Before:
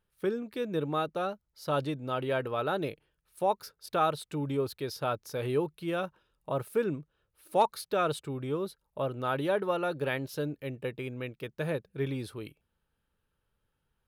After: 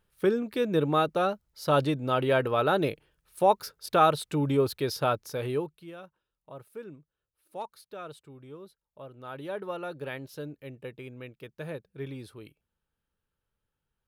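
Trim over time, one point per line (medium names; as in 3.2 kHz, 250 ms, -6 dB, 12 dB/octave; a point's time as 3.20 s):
4.99 s +6 dB
5.58 s -1 dB
5.95 s -13 dB
9.10 s -13 dB
9.64 s -5.5 dB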